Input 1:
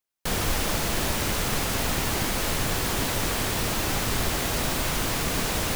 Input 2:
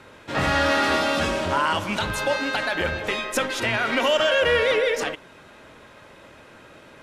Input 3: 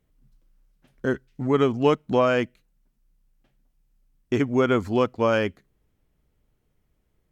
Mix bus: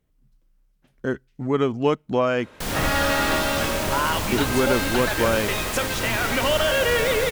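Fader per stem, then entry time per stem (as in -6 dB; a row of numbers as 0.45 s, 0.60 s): -2.0 dB, -1.5 dB, -1.0 dB; 2.35 s, 2.40 s, 0.00 s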